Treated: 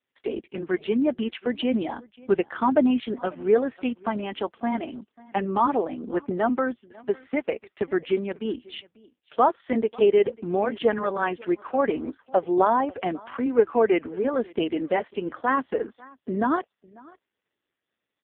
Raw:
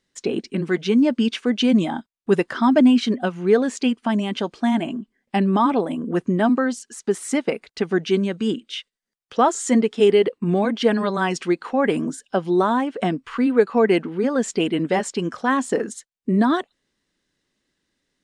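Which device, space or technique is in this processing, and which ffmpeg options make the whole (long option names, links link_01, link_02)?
satellite phone: -filter_complex "[0:a]asplit=3[link_01][link_02][link_03];[link_01]afade=type=out:start_time=12.07:duration=0.02[link_04];[link_02]equalizer=frequency=660:width=1.9:gain=5.5,afade=type=in:start_time=12.07:duration=0.02,afade=type=out:start_time=12.88:duration=0.02[link_05];[link_03]afade=type=in:start_time=12.88:duration=0.02[link_06];[link_04][link_05][link_06]amix=inputs=3:normalize=0,highpass=340,lowpass=3100,aecho=1:1:544:0.0668,volume=-1dB" -ar 8000 -c:a libopencore_amrnb -b:a 4750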